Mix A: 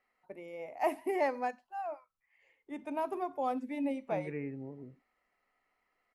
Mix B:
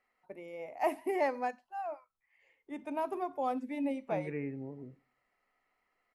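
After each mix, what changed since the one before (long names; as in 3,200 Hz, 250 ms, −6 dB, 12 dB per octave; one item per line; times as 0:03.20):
reverb: on, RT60 0.45 s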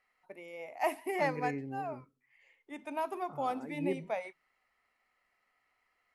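first voice: add tilt shelving filter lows −5 dB, about 820 Hz
second voice: entry −2.90 s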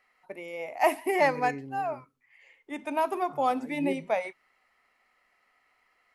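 first voice +8.0 dB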